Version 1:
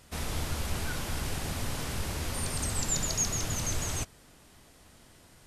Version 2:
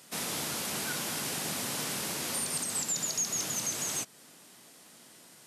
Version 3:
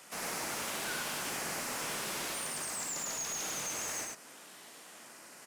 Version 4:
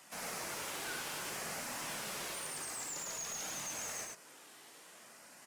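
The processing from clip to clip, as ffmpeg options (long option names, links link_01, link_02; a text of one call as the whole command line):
ffmpeg -i in.wav -af "highpass=frequency=160:width=0.5412,highpass=frequency=160:width=1.3066,highshelf=frequency=3600:gain=7.5,alimiter=limit=-22.5dB:level=0:latency=1:release=198" out.wav
ffmpeg -i in.wav -filter_complex "[0:a]acrossover=split=210|1000|4200[link_01][link_02][link_03][link_04];[link_03]acrusher=samples=8:mix=1:aa=0.000001:lfo=1:lforange=4.8:lforate=0.81[link_05];[link_01][link_02][link_05][link_04]amix=inputs=4:normalize=0,asplit=2[link_06][link_07];[link_07]highpass=frequency=720:poles=1,volume=19dB,asoftclip=type=tanh:threshold=-21.5dB[link_08];[link_06][link_08]amix=inputs=2:normalize=0,lowpass=frequency=4100:poles=1,volume=-6dB,aecho=1:1:52.48|102:0.355|0.708,volume=-7.5dB" out.wav
ffmpeg -i in.wav -af "flanger=delay=1:depth=1.6:regen=-60:speed=0.55:shape=triangular" out.wav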